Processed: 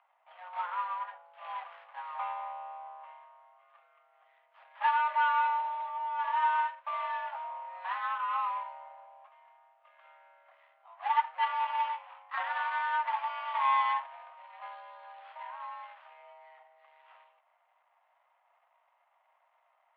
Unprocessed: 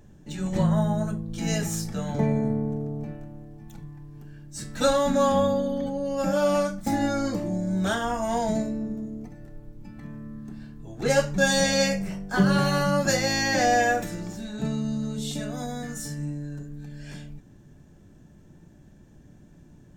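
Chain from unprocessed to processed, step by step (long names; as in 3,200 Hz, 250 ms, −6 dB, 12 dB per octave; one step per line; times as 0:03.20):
running median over 25 samples
single-sideband voice off tune +350 Hz 490–2,800 Hz
level −2.5 dB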